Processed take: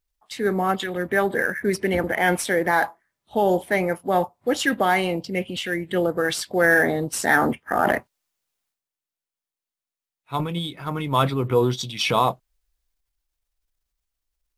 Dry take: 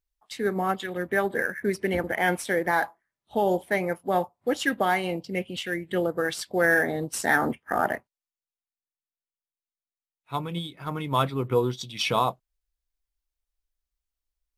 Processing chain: transient shaper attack -1 dB, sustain +4 dB, from 7.83 s sustain +11 dB, from 10.42 s sustain +5 dB; gain +4 dB

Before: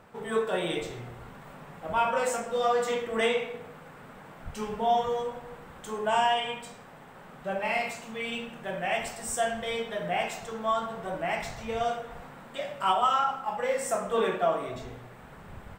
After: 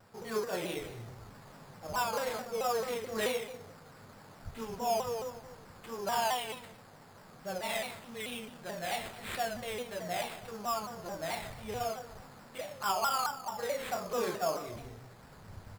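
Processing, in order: bell 100 Hz +10 dB 0.35 oct; sample-rate reducer 6000 Hz, jitter 0%; shaped vibrato saw down 4.6 Hz, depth 160 cents; gain -6.5 dB

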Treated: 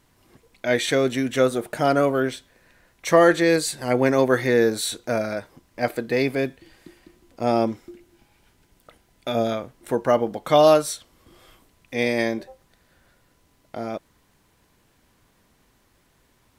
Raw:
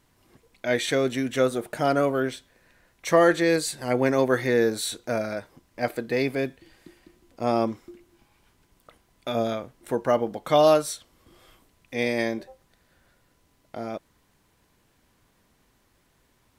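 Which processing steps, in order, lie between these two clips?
7.43–9.51 notch 1100 Hz, Q 6.4; gain +3 dB

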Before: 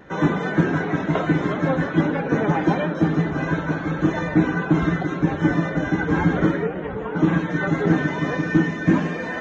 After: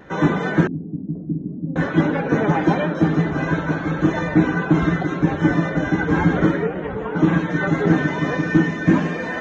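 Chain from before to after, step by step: 0.67–1.76 ladder low-pass 290 Hz, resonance 45%; gain +2 dB

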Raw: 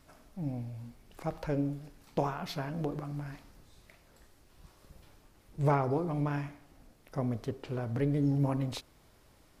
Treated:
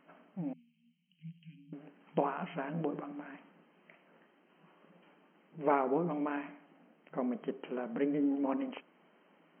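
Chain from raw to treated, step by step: 0.53–1.73 inverse Chebyshev band-stop 390–1300 Hz, stop band 60 dB; FFT band-pass 160–3200 Hz

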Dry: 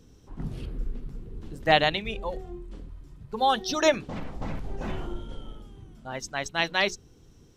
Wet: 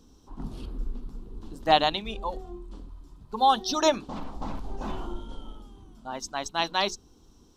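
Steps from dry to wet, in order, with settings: ten-band EQ 125 Hz -11 dB, 250 Hz +4 dB, 500 Hz -5 dB, 1000 Hz +8 dB, 2000 Hz -11 dB, 4000 Hz +4 dB

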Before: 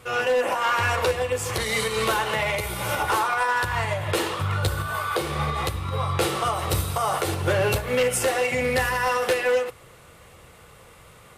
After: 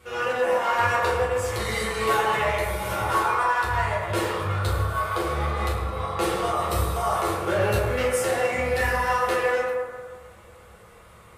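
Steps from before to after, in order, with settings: 2.04–2.44 comb 7 ms, depth 55%; reverb RT60 1.7 s, pre-delay 7 ms, DRR -7 dB; gain -8 dB

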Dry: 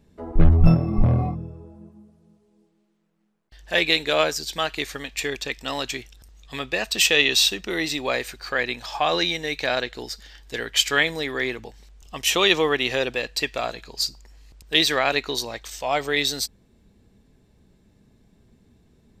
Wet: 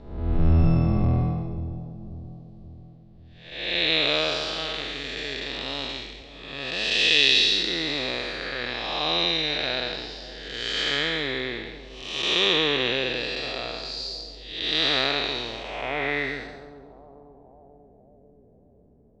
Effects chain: time blur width 0.366 s; split-band echo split 830 Hz, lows 0.539 s, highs 0.139 s, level -14.5 dB; low-pass sweep 4200 Hz -> 580 Hz, 15.08–18.2

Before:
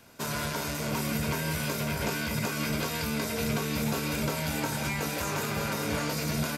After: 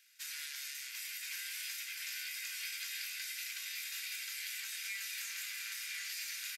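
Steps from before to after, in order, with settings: rattling part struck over -34 dBFS, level -37 dBFS; elliptic high-pass 1800 Hz, stop band 80 dB; echo 1.028 s -5.5 dB; gain -6 dB

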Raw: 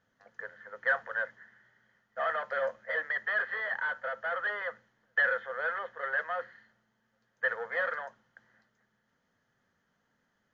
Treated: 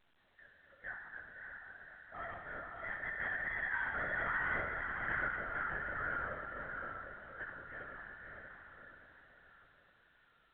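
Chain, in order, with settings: Doppler pass-by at 4.45, 8 m/s, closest 2.6 m; Chebyshev low-pass 1900 Hz, order 2; low shelf 140 Hz -11 dB; limiter -34.5 dBFS, peak gain reduction 11 dB; tilt shelf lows -4.5 dB; resonator 66 Hz, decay 1.4 s, harmonics all, mix 90%; diffused feedback echo 0.597 s, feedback 45%, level -3 dB; LPC vocoder at 8 kHz whisper; gain +16 dB; A-law 64 kbps 8000 Hz

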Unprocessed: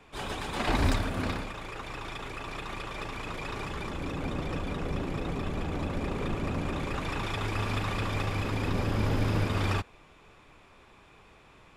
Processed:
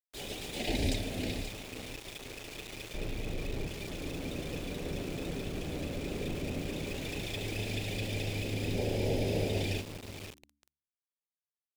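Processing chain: 2.94–3.68 tilt -2.5 dB/oct; on a send: feedback echo 0.53 s, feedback 32%, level -10.5 dB; 8.78–9.62 on the sum: spectral gain 350–1300 Hz +6 dB; Butterworth band-stop 1200 Hz, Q 0.67; low shelf 260 Hz -6.5 dB; sample gate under -41.5 dBFS; de-hum 71.9 Hz, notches 5

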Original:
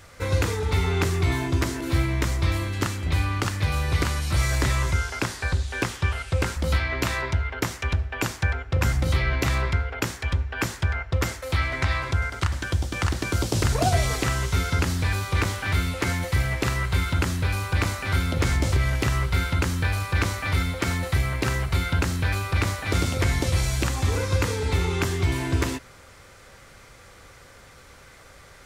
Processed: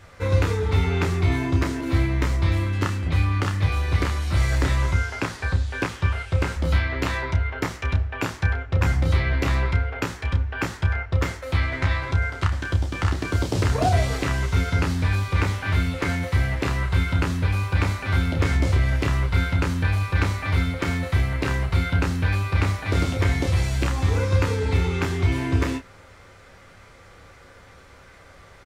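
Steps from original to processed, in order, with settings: high shelf 5000 Hz -11 dB; on a send: early reflections 11 ms -8.5 dB, 30 ms -6.5 dB

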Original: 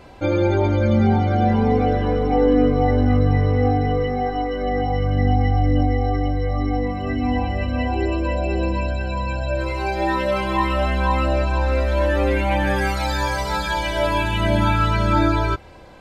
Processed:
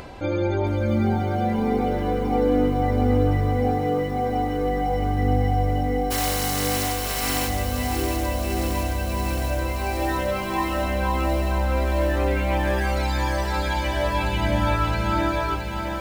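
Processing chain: 6.1–7.47 spectral contrast lowered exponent 0.18; upward compressor, threshold -25 dBFS; lo-fi delay 0.669 s, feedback 80%, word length 7-bit, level -7.5 dB; gain -5 dB

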